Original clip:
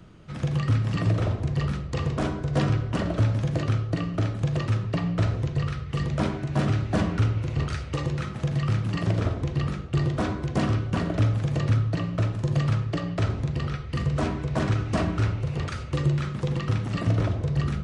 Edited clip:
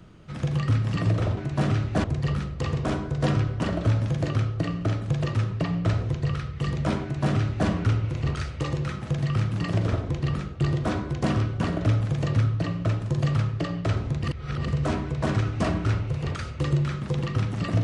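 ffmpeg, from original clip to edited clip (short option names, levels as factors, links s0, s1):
-filter_complex "[0:a]asplit=5[s0][s1][s2][s3][s4];[s0]atrim=end=1.372[s5];[s1]atrim=start=6.348:end=7.022[s6];[s2]atrim=start=1.368:end=13.572[s7];[s3]atrim=start=13.568:end=14.012,asetpts=PTS-STARTPTS,areverse[s8];[s4]atrim=start=14.008[s9];[s5][s6]acrossfade=d=0.004:c1=hsin:c2=hsin[s10];[s10][s7]acrossfade=d=0.004:c1=hsin:c2=hsin[s11];[s11][s8]acrossfade=d=0.004:c1=hsin:c2=hsin[s12];[s12][s9]acrossfade=d=0.004:c1=hsin:c2=hsin"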